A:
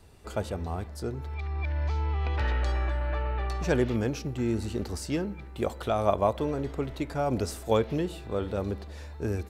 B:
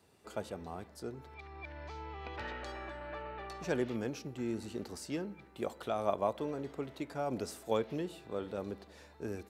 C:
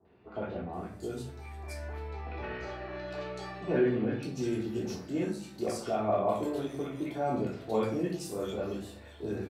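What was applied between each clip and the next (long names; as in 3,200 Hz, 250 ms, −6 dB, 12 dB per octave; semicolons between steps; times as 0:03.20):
high-pass filter 160 Hz 12 dB per octave; level −7.5 dB
three-band delay without the direct sound lows, mids, highs 50/730 ms, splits 1,000/3,000 Hz; rectangular room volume 430 cubic metres, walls furnished, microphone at 3.3 metres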